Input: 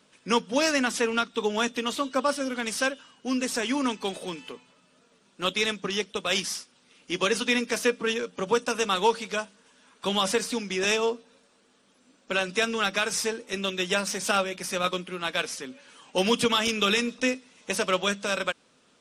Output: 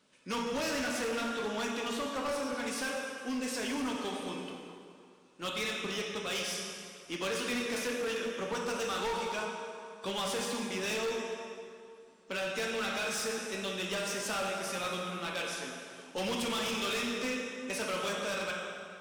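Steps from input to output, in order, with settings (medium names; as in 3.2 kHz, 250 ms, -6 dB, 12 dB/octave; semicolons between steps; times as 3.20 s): plate-style reverb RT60 2.3 s, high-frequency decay 0.75×, DRR 0 dB; hard clipper -22.5 dBFS, distortion -9 dB; trim -8 dB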